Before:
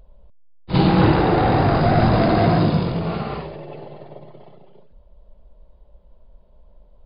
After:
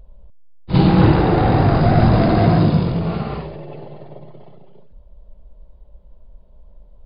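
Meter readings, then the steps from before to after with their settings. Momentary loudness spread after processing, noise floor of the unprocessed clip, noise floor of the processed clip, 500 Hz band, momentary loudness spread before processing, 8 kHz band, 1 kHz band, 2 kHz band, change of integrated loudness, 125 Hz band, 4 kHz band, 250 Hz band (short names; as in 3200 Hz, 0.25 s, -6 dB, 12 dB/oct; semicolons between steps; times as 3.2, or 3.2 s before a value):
14 LU, -51 dBFS, -46 dBFS, +0.5 dB, 16 LU, n/a, -0.5 dB, -1.0 dB, +2.5 dB, +4.0 dB, -1.0 dB, +2.5 dB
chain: low shelf 260 Hz +6.5 dB; gain -1 dB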